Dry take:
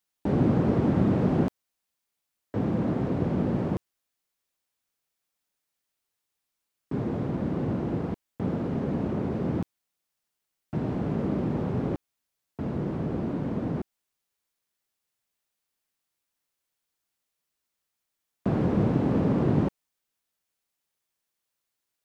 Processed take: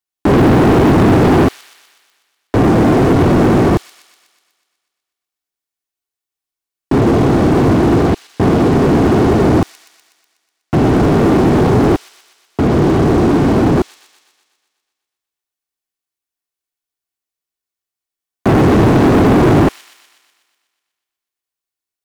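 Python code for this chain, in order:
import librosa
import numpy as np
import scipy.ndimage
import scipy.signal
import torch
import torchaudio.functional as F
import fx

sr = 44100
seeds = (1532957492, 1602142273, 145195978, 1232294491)

y = x + 0.42 * np.pad(x, (int(2.7 * sr / 1000.0), 0))[:len(x)]
y = fx.leveller(y, sr, passes=5)
y = fx.echo_wet_highpass(y, sr, ms=123, feedback_pct=62, hz=4000.0, wet_db=-6.0)
y = y * 10.0 ** (4.5 / 20.0)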